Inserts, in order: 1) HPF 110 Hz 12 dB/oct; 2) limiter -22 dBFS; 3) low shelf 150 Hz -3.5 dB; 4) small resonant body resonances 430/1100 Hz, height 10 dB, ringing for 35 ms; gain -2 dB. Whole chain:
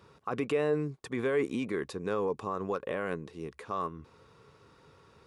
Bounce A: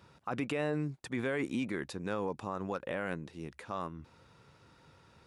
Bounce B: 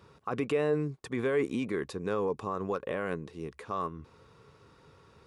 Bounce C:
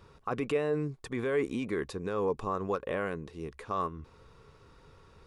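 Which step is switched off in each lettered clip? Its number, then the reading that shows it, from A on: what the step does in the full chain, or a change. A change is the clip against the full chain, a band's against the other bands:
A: 4, 500 Hz band -6.0 dB; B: 3, 125 Hz band +1.5 dB; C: 1, 125 Hz band +1.5 dB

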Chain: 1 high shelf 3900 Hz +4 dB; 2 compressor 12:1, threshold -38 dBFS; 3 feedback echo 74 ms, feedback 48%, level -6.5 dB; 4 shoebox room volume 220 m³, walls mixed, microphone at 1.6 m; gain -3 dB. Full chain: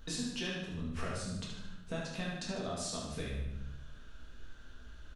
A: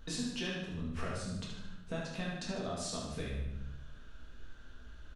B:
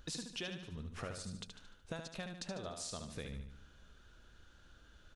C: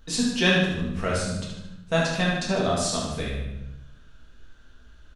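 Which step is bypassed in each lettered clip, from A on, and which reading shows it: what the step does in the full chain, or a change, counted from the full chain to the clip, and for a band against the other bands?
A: 1, 8 kHz band -1.5 dB; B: 4, echo-to-direct 5.5 dB to -5.5 dB; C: 2, mean gain reduction 8.5 dB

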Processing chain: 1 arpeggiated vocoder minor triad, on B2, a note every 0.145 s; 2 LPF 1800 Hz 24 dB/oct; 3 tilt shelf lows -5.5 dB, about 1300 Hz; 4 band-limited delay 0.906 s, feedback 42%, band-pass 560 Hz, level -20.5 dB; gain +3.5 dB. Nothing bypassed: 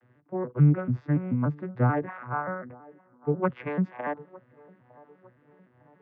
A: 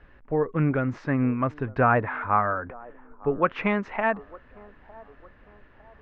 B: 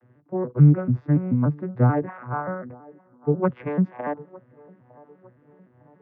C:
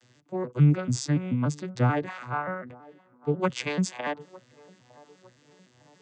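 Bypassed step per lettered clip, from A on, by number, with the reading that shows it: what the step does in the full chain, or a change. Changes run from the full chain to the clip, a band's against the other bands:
1, 125 Hz band -10.5 dB; 3, momentary loudness spread change +2 LU; 2, 2 kHz band +2.5 dB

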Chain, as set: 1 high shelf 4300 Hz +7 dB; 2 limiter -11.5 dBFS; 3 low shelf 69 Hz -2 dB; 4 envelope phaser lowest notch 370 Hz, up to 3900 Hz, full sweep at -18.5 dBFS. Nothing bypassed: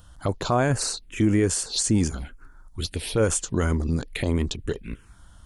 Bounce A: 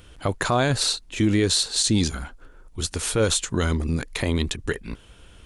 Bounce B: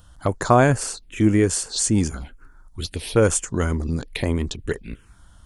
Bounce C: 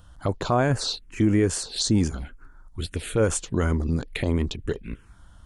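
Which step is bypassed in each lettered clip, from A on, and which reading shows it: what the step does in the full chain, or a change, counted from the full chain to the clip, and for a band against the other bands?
4, 4 kHz band +6.5 dB; 2, crest factor change +6.0 dB; 1, 8 kHz band -4.5 dB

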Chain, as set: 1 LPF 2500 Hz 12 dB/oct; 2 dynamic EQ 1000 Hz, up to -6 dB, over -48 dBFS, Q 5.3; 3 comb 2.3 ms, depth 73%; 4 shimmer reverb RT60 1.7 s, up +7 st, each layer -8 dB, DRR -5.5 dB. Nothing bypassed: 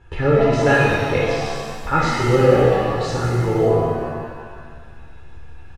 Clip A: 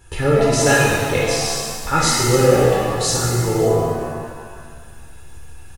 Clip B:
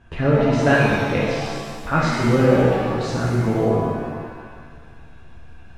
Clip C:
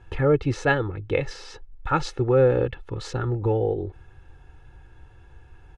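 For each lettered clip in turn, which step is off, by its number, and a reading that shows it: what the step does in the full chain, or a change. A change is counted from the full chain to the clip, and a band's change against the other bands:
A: 1, 8 kHz band +17.0 dB; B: 3, 250 Hz band +4.0 dB; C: 4, momentary loudness spread change +3 LU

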